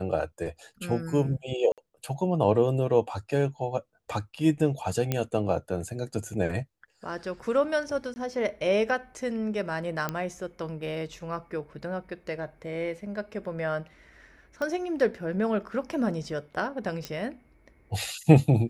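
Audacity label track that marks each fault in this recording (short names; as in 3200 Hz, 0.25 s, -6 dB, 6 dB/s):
1.720000	1.780000	gap 57 ms
5.120000	5.120000	pop -12 dBFS
8.140000	8.160000	gap 20 ms
10.090000	10.090000	pop -14 dBFS
14.620000	14.620000	pop -20 dBFS
17.050000	17.050000	pop -18 dBFS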